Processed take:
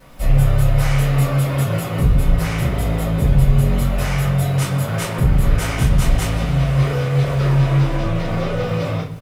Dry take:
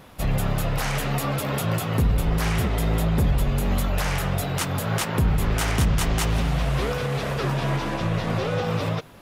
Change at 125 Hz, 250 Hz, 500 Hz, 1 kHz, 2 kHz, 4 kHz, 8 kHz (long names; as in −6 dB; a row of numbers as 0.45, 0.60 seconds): +8.0, +5.0, +3.5, +1.0, +2.0, +0.5, +0.5 decibels